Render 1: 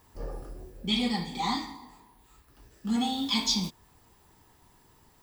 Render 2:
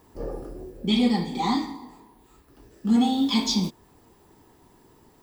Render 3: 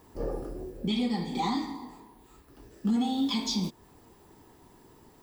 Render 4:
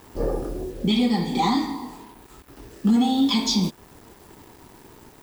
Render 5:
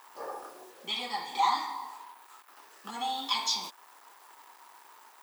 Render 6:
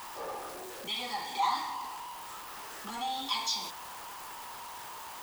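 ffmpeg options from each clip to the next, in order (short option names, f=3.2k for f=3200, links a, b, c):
-af "equalizer=f=340:w=0.62:g=10.5"
-af "alimiter=limit=-20dB:level=0:latency=1:release=274"
-af "acrusher=bits=8:mix=0:aa=0.5,volume=8dB"
-af "highpass=f=1k:t=q:w=2.1,volume=-5.5dB"
-af "aeval=exprs='val(0)+0.5*0.0168*sgn(val(0))':c=same,volume=-4dB"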